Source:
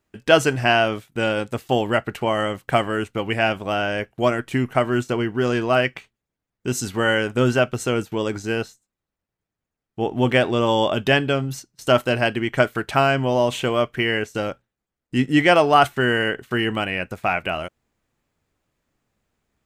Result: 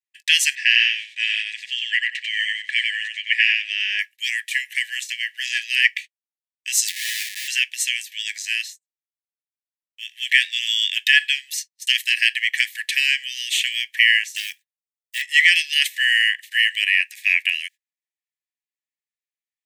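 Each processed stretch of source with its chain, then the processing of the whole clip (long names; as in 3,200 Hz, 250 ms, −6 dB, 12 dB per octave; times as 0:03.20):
0:00.55–0:03.99: high-frequency loss of the air 120 metres + feedback echo with a high-pass in the loop 93 ms, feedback 18%, high-pass 430 Hz, level −3 dB
0:06.88–0:07.48: downward compressor 10 to 1, threshold −24 dBFS + comparator with hysteresis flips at −40.5 dBFS
0:14.36–0:15.22: one scale factor per block 7 bits + high-shelf EQ 5,000 Hz +10.5 dB + saturating transformer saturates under 1,000 Hz
whole clip: noise gate −40 dBFS, range −27 dB; Chebyshev high-pass filter 1,700 Hz, order 10; boost into a limiter +11.5 dB; level −1 dB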